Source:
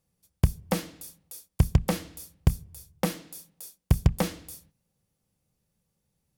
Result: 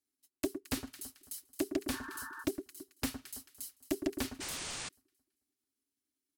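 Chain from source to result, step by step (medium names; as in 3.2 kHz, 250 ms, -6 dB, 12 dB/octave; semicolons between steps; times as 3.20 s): high-pass 65 Hz 6 dB/octave; transient shaper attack +3 dB, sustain -6 dB; amplifier tone stack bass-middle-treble 5-5-5; comb 5.8 ms, depth 53%; on a send: echo whose repeats swap between lows and highs 110 ms, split 1.8 kHz, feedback 62%, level -10 dB; on the sum: waveshaping leveller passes 1; painted sound noise, 4.40–4.89 s, 250–10000 Hz -40 dBFS; frequency shift -440 Hz; spectral replace 1.94–2.41 s, 880–1800 Hz before; loudspeaker Doppler distortion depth 0.33 ms; trim -1 dB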